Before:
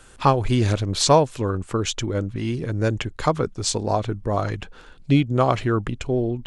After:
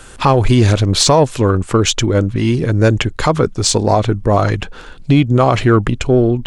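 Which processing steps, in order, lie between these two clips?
in parallel at -10.5 dB: saturation -20 dBFS, distortion -8 dB; on the sum: loudness maximiser +10 dB; trim -1 dB

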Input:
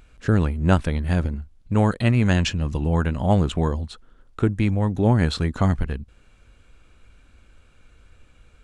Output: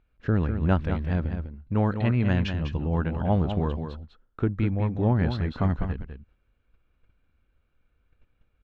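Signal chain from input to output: gate -45 dBFS, range -12 dB; distance through air 260 m; on a send: delay 200 ms -8 dB; on the sum: trim -4.5 dB

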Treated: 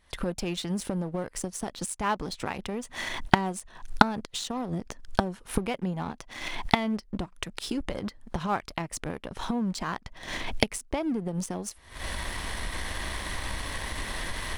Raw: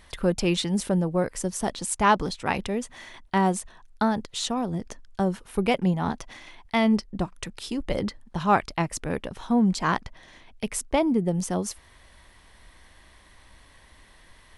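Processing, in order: recorder AGC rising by 75 dB/s; waveshaping leveller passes 1; trim -12 dB

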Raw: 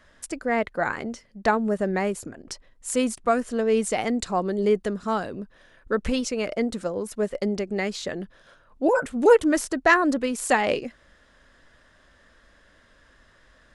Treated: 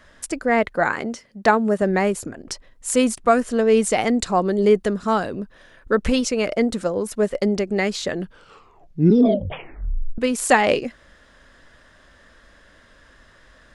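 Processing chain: 0.86–1.82 s: high-pass 130 Hz 6 dB/octave; 8.16 s: tape stop 2.02 s; trim +5.5 dB

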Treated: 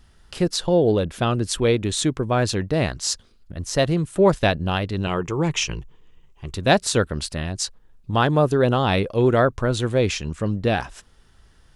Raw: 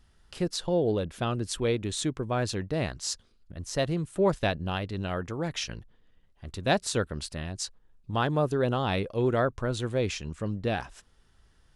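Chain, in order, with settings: 5.06–6.54 s: rippled EQ curve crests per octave 0.72, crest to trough 9 dB; trim +8 dB

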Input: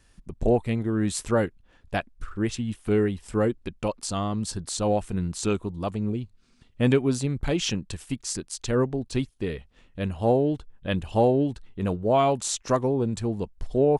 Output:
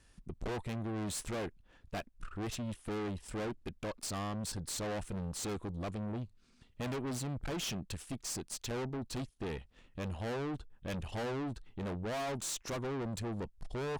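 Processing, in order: valve stage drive 34 dB, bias 0.55; trim -1.5 dB

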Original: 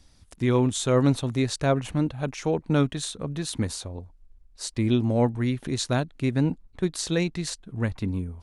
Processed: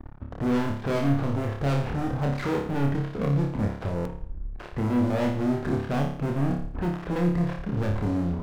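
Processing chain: de-esser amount 95%; low-pass 1.5 kHz 24 dB/octave; in parallel at +1.5 dB: compression, threshold -30 dBFS, peak gain reduction 14 dB; on the sum: waveshaping leveller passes 5; peak limiter -18.5 dBFS, peak gain reduction 11 dB; flutter echo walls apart 4.9 m, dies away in 0.56 s; buffer glitch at 3.96 s, samples 1024, times 3; trim -6 dB

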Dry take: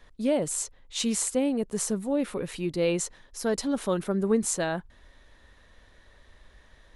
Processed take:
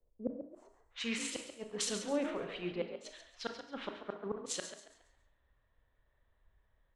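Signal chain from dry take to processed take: pre-emphasis filter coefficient 0.97; level-controlled noise filter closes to 830 Hz, open at -28.5 dBFS; treble shelf 2.6 kHz -7 dB; peak limiter -29.5 dBFS, peak gain reduction 10.5 dB; low-pass sweep 480 Hz -> 3.4 kHz, 0.41–1.35 s; inverted gate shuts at -39 dBFS, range -34 dB; frequency-shifting echo 138 ms, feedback 42%, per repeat +51 Hz, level -9 dB; on a send at -6.5 dB: reverberation RT60 0.70 s, pre-delay 22 ms; on the sum: three bands expanded up and down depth 40%; trim +13.5 dB

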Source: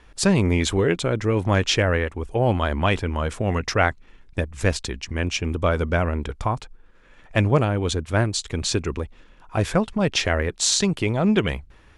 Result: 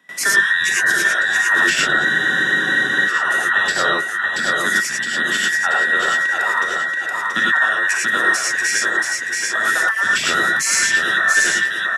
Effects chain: every band turned upside down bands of 2 kHz; treble shelf 7.7 kHz +10.5 dB; feedback delay 681 ms, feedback 26%, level -5.5 dB; in parallel at +0.5 dB: compression, threshold -30 dBFS, peak gain reduction 17 dB; on the sum: high-pass 150 Hz 12 dB/octave; peaking EQ 4.4 kHz -6 dB 0.22 oct; band-stop 880 Hz, Q 12; gated-style reverb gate 130 ms rising, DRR -4 dB; gate with hold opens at -32 dBFS; spectral freeze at 2.07 s, 1.00 s; three bands compressed up and down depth 40%; trim -4.5 dB

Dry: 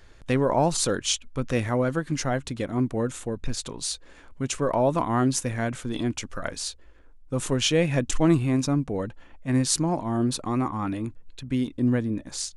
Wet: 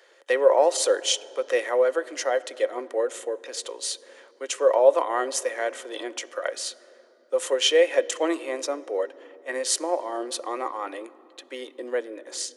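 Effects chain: steep high-pass 360 Hz 48 dB/octave; small resonant body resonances 540/1900/3100 Hz, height 11 dB, ringing for 45 ms; on a send: reverberation RT60 3.4 s, pre-delay 3 ms, DRR 16.5 dB

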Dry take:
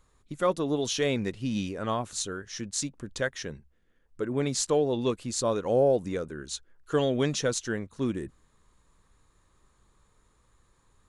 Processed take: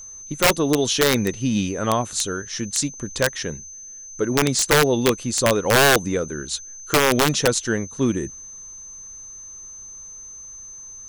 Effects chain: whistle 6.2 kHz -45 dBFS; integer overflow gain 17.5 dB; trim +8.5 dB

